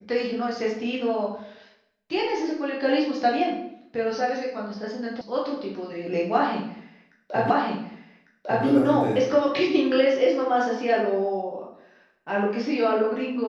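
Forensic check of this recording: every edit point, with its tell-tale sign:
0:05.21: cut off before it has died away
0:07.50: the same again, the last 1.15 s

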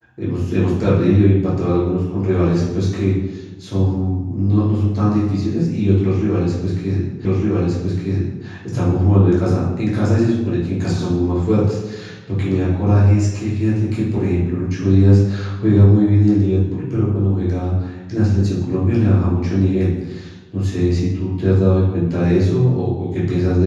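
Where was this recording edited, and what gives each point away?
0:07.25: the same again, the last 1.21 s

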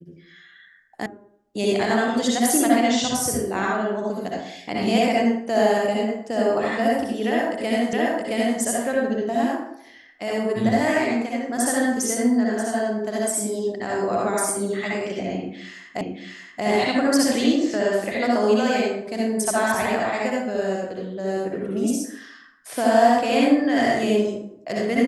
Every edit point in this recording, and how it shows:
0:01.06: cut off before it has died away
0:07.93: the same again, the last 0.67 s
0:16.01: the same again, the last 0.63 s

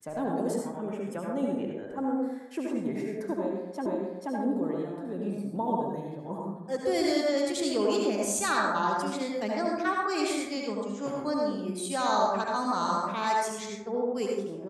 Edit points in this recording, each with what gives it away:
0:03.86: the same again, the last 0.48 s

